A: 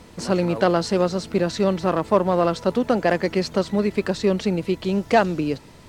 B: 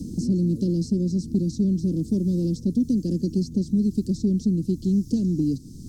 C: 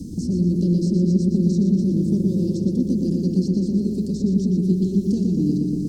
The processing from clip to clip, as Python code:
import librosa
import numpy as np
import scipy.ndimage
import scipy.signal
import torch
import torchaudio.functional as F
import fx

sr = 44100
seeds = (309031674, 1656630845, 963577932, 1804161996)

y1 = scipy.signal.sosfilt(scipy.signal.ellip(3, 1.0, 50, [280.0, 5500.0], 'bandstop', fs=sr, output='sos'), x)
y1 = fx.high_shelf(y1, sr, hz=2000.0, db=-8.5)
y1 = fx.band_squash(y1, sr, depth_pct=70)
y1 = y1 * librosa.db_to_amplitude(3.5)
y2 = fx.echo_filtered(y1, sr, ms=119, feedback_pct=83, hz=4800.0, wet_db=-3)